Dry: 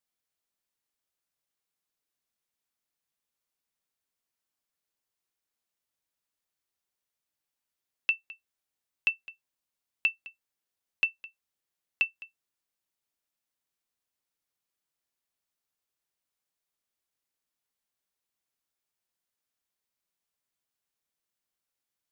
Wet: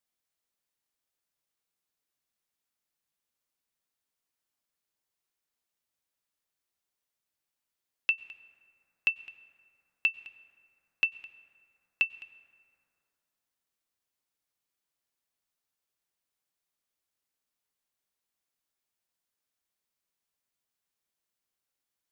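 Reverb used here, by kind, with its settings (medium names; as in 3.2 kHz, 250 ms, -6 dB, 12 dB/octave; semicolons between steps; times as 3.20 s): plate-style reverb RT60 2.8 s, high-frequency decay 0.4×, pre-delay 85 ms, DRR 18.5 dB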